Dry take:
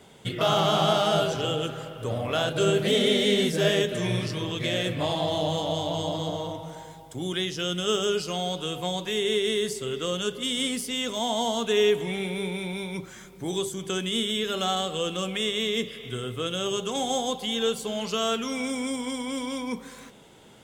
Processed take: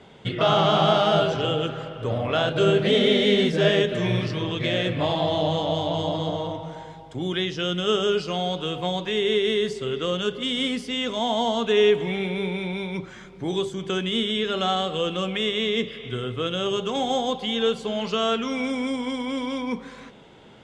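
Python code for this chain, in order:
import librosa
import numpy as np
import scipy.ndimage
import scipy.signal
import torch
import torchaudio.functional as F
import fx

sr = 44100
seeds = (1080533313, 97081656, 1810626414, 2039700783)

y = scipy.signal.sosfilt(scipy.signal.butter(2, 3800.0, 'lowpass', fs=sr, output='sos'), x)
y = F.gain(torch.from_numpy(y), 3.5).numpy()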